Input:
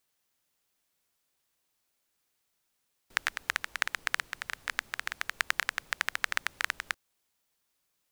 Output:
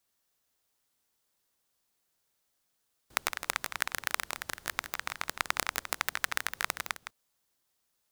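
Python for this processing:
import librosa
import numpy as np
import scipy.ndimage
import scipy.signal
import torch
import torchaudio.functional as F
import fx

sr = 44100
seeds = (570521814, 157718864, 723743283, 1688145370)

p1 = fx.cycle_switch(x, sr, every=2, mode='inverted')
p2 = fx.peak_eq(p1, sr, hz=2400.0, db=-3.5, octaves=0.75)
y = p2 + fx.echo_single(p2, sr, ms=162, db=-9.0, dry=0)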